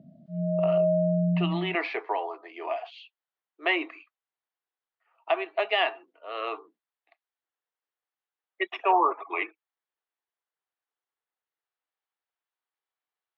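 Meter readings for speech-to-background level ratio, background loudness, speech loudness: −3.5 dB, −26.0 LKFS, −29.5 LKFS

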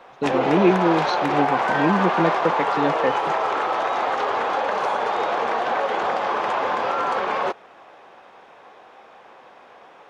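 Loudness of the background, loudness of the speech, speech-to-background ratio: −22.5 LKFS, −23.5 LKFS, −1.0 dB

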